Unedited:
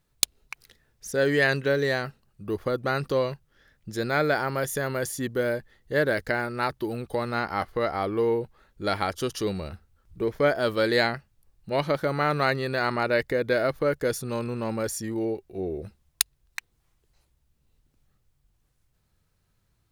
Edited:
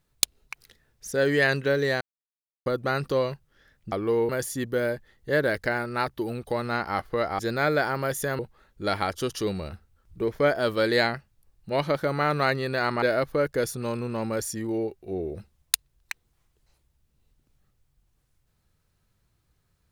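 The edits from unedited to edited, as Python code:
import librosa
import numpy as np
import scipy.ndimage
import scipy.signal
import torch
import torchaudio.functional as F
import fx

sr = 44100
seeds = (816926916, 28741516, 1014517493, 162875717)

y = fx.edit(x, sr, fx.silence(start_s=2.01, length_s=0.65),
    fx.swap(start_s=3.92, length_s=1.0, other_s=8.02, other_length_s=0.37),
    fx.cut(start_s=13.02, length_s=0.47), tone=tone)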